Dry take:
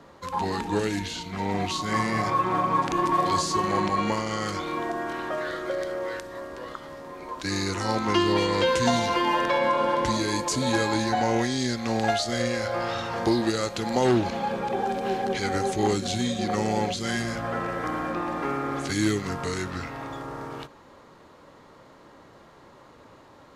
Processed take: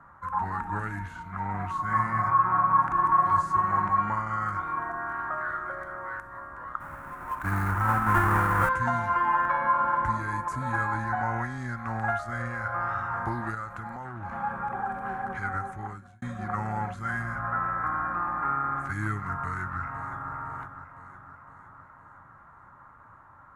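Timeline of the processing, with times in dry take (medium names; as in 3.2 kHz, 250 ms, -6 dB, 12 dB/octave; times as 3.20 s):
6.80–8.69 s: square wave that keeps the level
13.54–14.31 s: compression, threshold -28 dBFS
15.37–16.22 s: fade out
19.36–20.33 s: echo throw 510 ms, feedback 60%, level -10 dB
whole clip: FFT filter 110 Hz 0 dB, 460 Hz -19 dB, 820 Hz -2 dB, 1.4 kHz +7 dB, 3 kHz -23 dB, 4.5 kHz -29 dB, 10 kHz -14 dB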